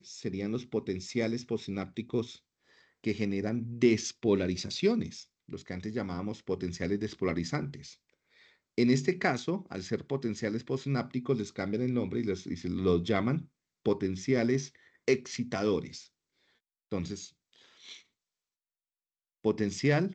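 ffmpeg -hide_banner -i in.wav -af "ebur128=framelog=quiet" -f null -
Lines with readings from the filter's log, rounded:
Integrated loudness:
  I:         -31.9 LUFS
  Threshold: -42.7 LUFS
Loudness range:
  LRA:         6.7 LU
  Threshold: -52.9 LUFS
  LRA low:   -37.8 LUFS
  LRA high:  -31.1 LUFS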